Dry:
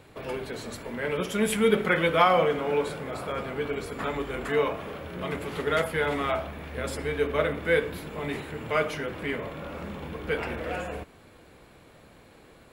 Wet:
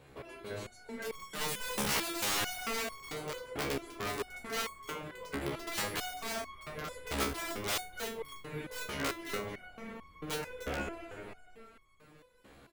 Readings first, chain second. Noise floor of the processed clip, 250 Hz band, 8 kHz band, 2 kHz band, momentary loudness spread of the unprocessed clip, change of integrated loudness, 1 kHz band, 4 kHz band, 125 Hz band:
-60 dBFS, -10.5 dB, +3.5 dB, -8.0 dB, 14 LU, -9.0 dB, -10.5 dB, -1.5 dB, -10.5 dB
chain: frequency-shifting echo 0.287 s, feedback 56%, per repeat -34 Hz, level -6 dB; wrapped overs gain 20.5 dB; stepped resonator 4.5 Hz 69–1100 Hz; gain +3 dB

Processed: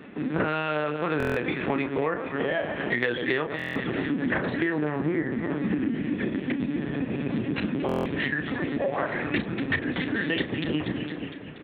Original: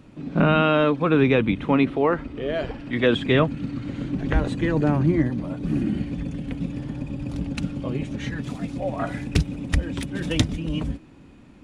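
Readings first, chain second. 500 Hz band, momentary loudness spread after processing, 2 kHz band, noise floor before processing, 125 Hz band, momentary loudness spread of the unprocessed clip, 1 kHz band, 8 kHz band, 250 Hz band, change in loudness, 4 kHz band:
-4.0 dB, 3 LU, +2.0 dB, -48 dBFS, -8.5 dB, 11 LU, -4.0 dB, n/a, -4.0 dB, -4.0 dB, -4.0 dB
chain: bell 1800 Hz +10 dB 0.37 oct; echo with dull and thin repeats by turns 0.117 s, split 1200 Hz, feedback 73%, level -9.5 dB; LPC vocoder at 8 kHz pitch kept; HPF 200 Hz 12 dB/oct; doubler 33 ms -10.5 dB; compressor 6:1, threshold -32 dBFS, peak gain reduction 18 dB; stuck buffer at 1.18/3.57/7.87, samples 1024, times 7; gain +8 dB

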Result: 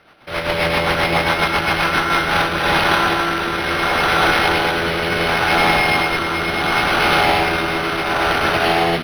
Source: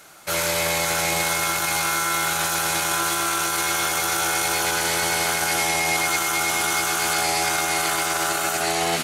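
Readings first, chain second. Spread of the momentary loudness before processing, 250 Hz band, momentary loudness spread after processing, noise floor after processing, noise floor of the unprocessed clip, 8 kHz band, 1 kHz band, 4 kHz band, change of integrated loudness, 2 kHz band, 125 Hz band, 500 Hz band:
2 LU, +9.5 dB, 5 LU, -23 dBFS, -25 dBFS, -13.5 dB, +6.5 dB, +4.0 dB, +4.5 dB, +6.5 dB, +10.0 dB, +8.5 dB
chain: AGC gain up to 11.5 dB; rotary speaker horn 7.5 Hz, later 0.7 Hz, at 1.82; decimation joined by straight lines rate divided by 6×; gain +1 dB

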